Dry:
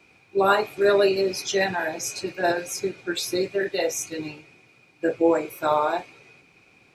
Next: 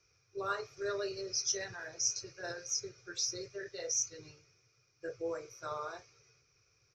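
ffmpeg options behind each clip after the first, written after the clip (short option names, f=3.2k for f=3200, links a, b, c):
-af "firequalizer=gain_entry='entry(120,0);entry(210,-26);entry(440,-7);entry(830,-20);entry(1200,-5);entry(2600,-15);entry(4000,-9);entry(5700,12);entry(8300,-23);entry(14000,-25)':delay=0.05:min_phase=1,volume=-7.5dB"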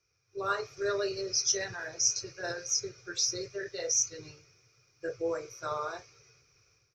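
-af "dynaudnorm=f=240:g=3:m=11.5dB,volume=-6dB"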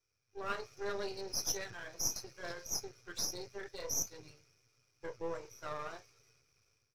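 -af "aeval=exprs='if(lt(val(0),0),0.251*val(0),val(0))':c=same,volume=-4.5dB"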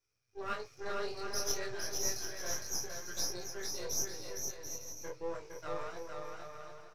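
-filter_complex "[0:a]flanger=delay=16.5:depth=7.6:speed=0.32,asplit=2[a][b];[b]aecho=0:1:460|736|901.6|1001|1061:0.631|0.398|0.251|0.158|0.1[c];[a][c]amix=inputs=2:normalize=0,volume=2.5dB"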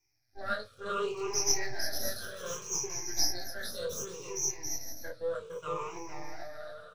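-af "afftfilt=real='re*pow(10,19/40*sin(2*PI*(0.73*log(max(b,1)*sr/1024/100)/log(2)-(-0.65)*(pts-256)/sr)))':imag='im*pow(10,19/40*sin(2*PI*(0.73*log(max(b,1)*sr/1024/100)/log(2)-(-0.65)*(pts-256)/sr)))':win_size=1024:overlap=0.75"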